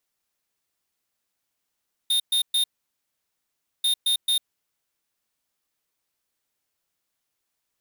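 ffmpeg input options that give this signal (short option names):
-f lavfi -i "aevalsrc='0.0841*(2*lt(mod(3660*t,1),0.5)-1)*clip(min(mod(mod(t,1.74),0.22),0.1-mod(mod(t,1.74),0.22))/0.005,0,1)*lt(mod(t,1.74),0.66)':d=3.48:s=44100"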